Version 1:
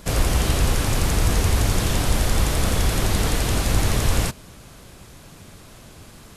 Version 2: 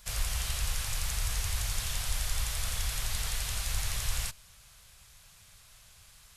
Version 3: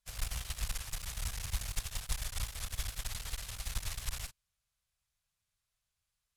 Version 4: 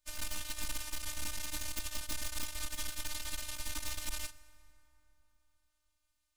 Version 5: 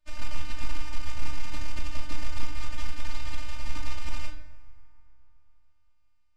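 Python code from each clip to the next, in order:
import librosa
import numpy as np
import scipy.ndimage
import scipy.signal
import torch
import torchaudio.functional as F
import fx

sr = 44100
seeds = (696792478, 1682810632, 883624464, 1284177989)

y1 = fx.tone_stack(x, sr, knobs='10-0-10')
y1 = F.gain(torch.from_numpy(y1), -6.0).numpy()
y2 = fx.clip_asym(y1, sr, top_db=-37.0, bottom_db=-22.5)
y2 = fx.upward_expand(y2, sr, threshold_db=-50.0, expansion=2.5)
y2 = F.gain(torch.from_numpy(y2), 1.5).numpy()
y3 = fx.rev_plate(y2, sr, seeds[0], rt60_s=3.7, hf_ratio=0.5, predelay_ms=0, drr_db=16.5)
y3 = 10.0 ** (-31.5 / 20.0) * (np.abs((y3 / 10.0 ** (-31.5 / 20.0) + 3.0) % 4.0 - 2.0) - 1.0)
y3 = fx.robotise(y3, sr, hz=303.0)
y3 = F.gain(torch.from_numpy(y3), 4.5).numpy()
y4 = fx.spacing_loss(y3, sr, db_at_10k=24)
y4 = fx.room_shoebox(y4, sr, seeds[1], volume_m3=150.0, walls='mixed', distance_m=0.63)
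y4 = F.gain(torch.from_numpy(y4), 7.0).numpy()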